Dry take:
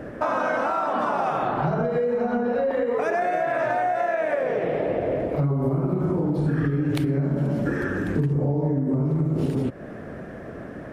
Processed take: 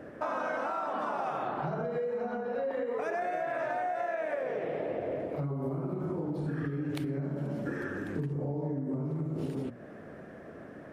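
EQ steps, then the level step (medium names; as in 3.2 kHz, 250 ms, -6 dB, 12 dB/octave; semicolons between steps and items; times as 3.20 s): bass shelf 69 Hz -12 dB; hum notches 60/120/180/240 Hz; -9.0 dB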